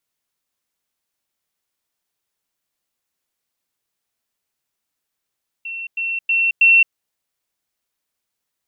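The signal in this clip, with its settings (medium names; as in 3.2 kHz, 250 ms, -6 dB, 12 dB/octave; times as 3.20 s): level ladder 2.71 kHz -26 dBFS, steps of 6 dB, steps 4, 0.22 s 0.10 s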